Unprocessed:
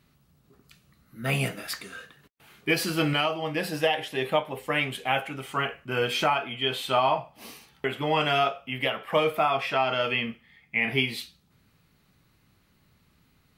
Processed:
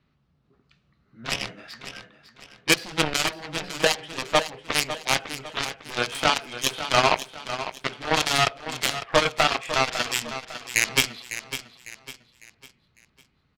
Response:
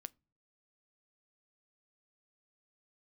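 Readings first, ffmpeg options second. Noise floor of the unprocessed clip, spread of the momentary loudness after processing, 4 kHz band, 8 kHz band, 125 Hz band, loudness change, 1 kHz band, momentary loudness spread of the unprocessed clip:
−65 dBFS, 15 LU, +5.0 dB, +13.5 dB, −2.5 dB, +2.0 dB, +1.0 dB, 11 LU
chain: -filter_complex "[0:a]lowpass=5600,acrossover=split=550|1600[link_01][link_02][link_03];[link_03]adynamicsmooth=sensitivity=1.5:basefreq=3200[link_04];[link_01][link_02][link_04]amix=inputs=3:normalize=0,aeval=exprs='0.335*(cos(1*acos(clip(val(0)/0.335,-1,1)))-cos(1*PI/2))+0.0668*(cos(7*acos(clip(val(0)/0.335,-1,1)))-cos(7*PI/2))':channel_layout=same,highshelf=frequency=3700:gain=11.5,aecho=1:1:552|1104|1656|2208:0.266|0.101|0.0384|0.0146,volume=3.5dB"

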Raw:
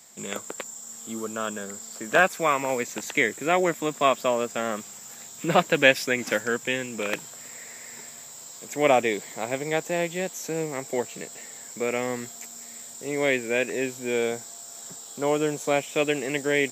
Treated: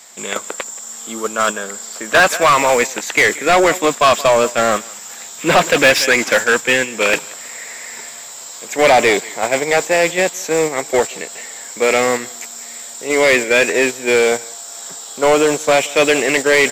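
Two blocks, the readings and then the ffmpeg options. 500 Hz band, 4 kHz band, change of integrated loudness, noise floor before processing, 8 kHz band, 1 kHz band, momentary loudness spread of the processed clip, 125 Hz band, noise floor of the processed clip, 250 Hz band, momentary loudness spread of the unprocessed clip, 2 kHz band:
+10.5 dB, +12.5 dB, +11.5 dB, −43 dBFS, +12.0 dB, +11.5 dB, 17 LU, +5.0 dB, −33 dBFS, +7.5 dB, 17 LU, +11.5 dB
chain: -filter_complex "[0:a]aecho=1:1:179:0.0794,agate=range=-7dB:threshold=-29dB:ratio=16:detection=peak,asplit=2[link_01][link_02];[link_02]highpass=frequency=720:poles=1,volume=27dB,asoftclip=type=tanh:threshold=-2dB[link_03];[link_01][link_03]amix=inputs=2:normalize=0,lowpass=frequency=4900:poles=1,volume=-6dB"

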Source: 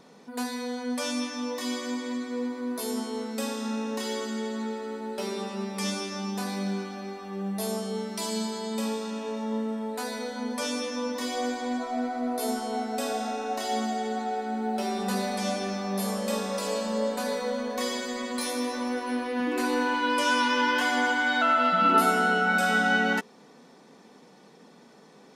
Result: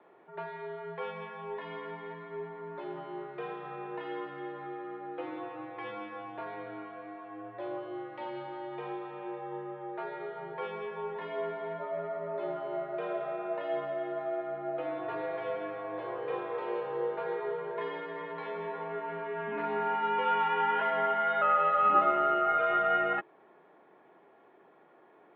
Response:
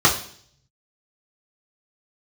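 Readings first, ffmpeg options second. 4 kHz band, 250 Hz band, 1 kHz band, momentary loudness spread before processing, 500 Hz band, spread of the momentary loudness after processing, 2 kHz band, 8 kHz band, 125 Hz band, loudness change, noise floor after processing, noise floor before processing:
−16.0 dB, −14.0 dB, −2.5 dB, 10 LU, −2.5 dB, 15 LU, −9.5 dB, below −40 dB, can't be measured, −5.0 dB, −60 dBFS, −53 dBFS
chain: -filter_complex "[0:a]highpass=frequency=240:width_type=q:width=0.5412,highpass=frequency=240:width_type=q:width=1.307,lowpass=frequency=3500:width_type=q:width=0.5176,lowpass=frequency=3500:width_type=q:width=0.7071,lowpass=frequency=3500:width_type=q:width=1.932,afreqshift=-80,acrossover=split=310 2300:gain=0.0891 1 0.0708[link_01][link_02][link_03];[link_01][link_02][link_03]amix=inputs=3:normalize=0,volume=-2dB"

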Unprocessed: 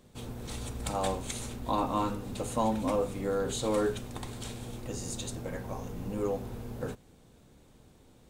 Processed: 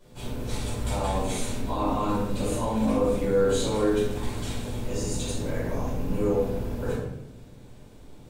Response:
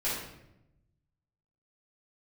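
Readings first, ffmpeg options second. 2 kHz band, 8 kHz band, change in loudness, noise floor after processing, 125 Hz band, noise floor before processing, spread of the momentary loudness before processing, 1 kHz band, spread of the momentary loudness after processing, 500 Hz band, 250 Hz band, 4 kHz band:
+5.5 dB, +3.5 dB, +6.0 dB, −47 dBFS, +7.5 dB, −59 dBFS, 11 LU, +2.0 dB, 9 LU, +6.5 dB, +7.0 dB, +4.5 dB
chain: -filter_complex "[0:a]alimiter=level_in=2dB:limit=-24dB:level=0:latency=1:release=14,volume=-2dB[link_01];[1:a]atrim=start_sample=2205[link_02];[link_01][link_02]afir=irnorm=-1:irlink=0"

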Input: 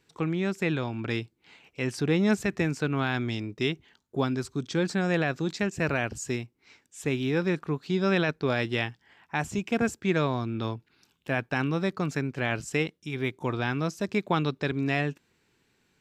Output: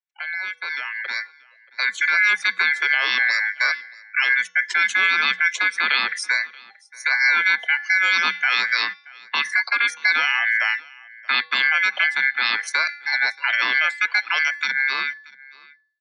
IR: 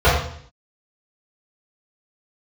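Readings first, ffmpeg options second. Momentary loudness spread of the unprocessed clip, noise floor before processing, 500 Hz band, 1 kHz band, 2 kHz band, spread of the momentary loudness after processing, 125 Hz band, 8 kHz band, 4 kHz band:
8 LU, −72 dBFS, −14.5 dB, +7.0 dB, +16.5 dB, 10 LU, below −30 dB, +5.5 dB, +13.5 dB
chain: -filter_complex "[0:a]afftdn=noise_reduction=34:noise_floor=-40,aeval=exprs='val(0)*sin(2*PI*1700*n/s)':channel_layout=same,acrossover=split=290 7900:gain=0.158 1 0.126[link_01][link_02][link_03];[link_01][link_02][link_03]amix=inputs=3:normalize=0,acrossover=split=210|790[link_04][link_05][link_06];[link_05]acompressor=threshold=-52dB:ratio=16[link_07];[link_04][link_07][link_06]amix=inputs=3:normalize=0,alimiter=limit=-22.5dB:level=0:latency=1:release=66,dynaudnorm=framelen=270:gausssize=11:maxgain=10.5dB,bandreject=frequency=310:width_type=h:width=4,bandreject=frequency=620:width_type=h:width=4,bandreject=frequency=930:width_type=h:width=4,bandreject=frequency=1240:width_type=h:width=4,bandreject=frequency=1550:width_type=h:width=4,bandreject=frequency=1860:width_type=h:width=4,bandreject=frequency=2170:width_type=h:width=4,bandreject=frequency=2480:width_type=h:width=4,bandreject=frequency=2790:width_type=h:width=4,bandreject=frequency=3100:width_type=h:width=4,bandreject=frequency=3410:width_type=h:width=4,bandreject=frequency=3720:width_type=h:width=4,bandreject=frequency=4030:width_type=h:width=4,bandreject=frequency=4340:width_type=h:width=4,bandreject=frequency=4650:width_type=h:width=4,bandreject=frequency=4960:width_type=h:width=4,bandreject=frequency=5270:width_type=h:width=4,bandreject=frequency=5580:width_type=h:width=4,bandreject=frequency=5890:width_type=h:width=4,bandreject=frequency=6200:width_type=h:width=4,bandreject=frequency=6510:width_type=h:width=4,bandreject=frequency=6820:width_type=h:width=4,afreqshift=180,acrossover=split=1800[link_08][link_09];[link_08]aeval=exprs='val(0)*(1-0.5/2+0.5/2*cos(2*PI*4.6*n/s))':channel_layout=same[link_10];[link_09]aeval=exprs='val(0)*(1-0.5/2-0.5/2*cos(2*PI*4.6*n/s))':channel_layout=same[link_11];[link_10][link_11]amix=inputs=2:normalize=0,asplit=2[link_12][link_13];[link_13]aecho=0:1:630:0.0668[link_14];[link_12][link_14]amix=inputs=2:normalize=0,volume=6.5dB"

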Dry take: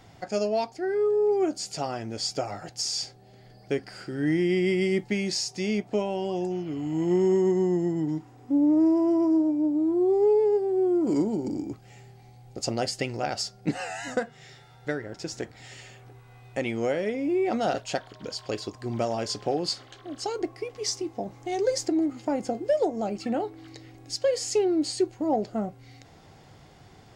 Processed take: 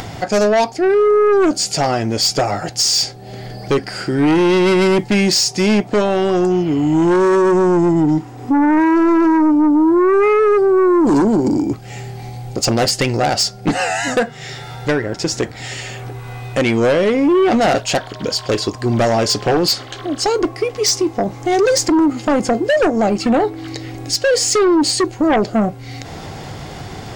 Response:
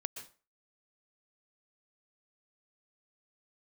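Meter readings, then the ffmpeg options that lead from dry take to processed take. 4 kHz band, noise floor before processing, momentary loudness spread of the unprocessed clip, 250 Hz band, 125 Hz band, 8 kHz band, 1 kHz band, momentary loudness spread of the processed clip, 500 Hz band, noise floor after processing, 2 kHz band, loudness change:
+14.5 dB, −52 dBFS, 13 LU, +11.0 dB, +13.0 dB, +15.0 dB, +15.0 dB, 15 LU, +11.0 dB, −34 dBFS, +15.0 dB, +11.5 dB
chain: -af "aeval=exprs='0.188*(cos(1*acos(clip(val(0)/0.188,-1,1)))-cos(1*PI/2))+0.0668*(cos(5*acos(clip(val(0)/0.188,-1,1)))-cos(5*PI/2))':channel_layout=same,acompressor=mode=upward:threshold=-30dB:ratio=2.5,volume=7.5dB"

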